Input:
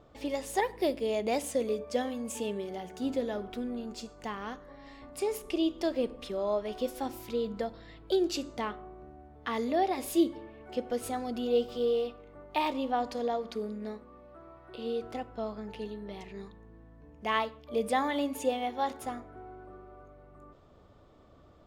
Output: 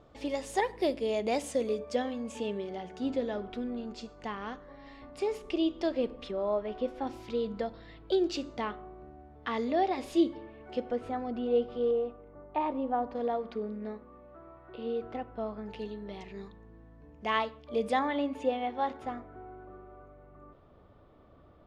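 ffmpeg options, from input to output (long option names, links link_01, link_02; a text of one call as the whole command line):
ffmpeg -i in.wav -af "asetnsamples=nb_out_samples=441:pad=0,asendcmd='1.95 lowpass f 4700;6.31 lowpass f 2400;7.07 lowpass f 4900;10.91 lowpass f 2100;11.91 lowpass f 1300;13.15 lowpass f 2500;15.66 lowpass f 6100;17.99 lowpass f 2900',lowpass=8400" out.wav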